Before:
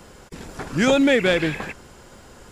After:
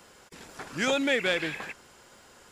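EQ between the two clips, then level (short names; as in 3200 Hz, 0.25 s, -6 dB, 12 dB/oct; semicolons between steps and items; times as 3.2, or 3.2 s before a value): tilt +3 dB/oct; high shelf 5000 Hz -10 dB; -6.5 dB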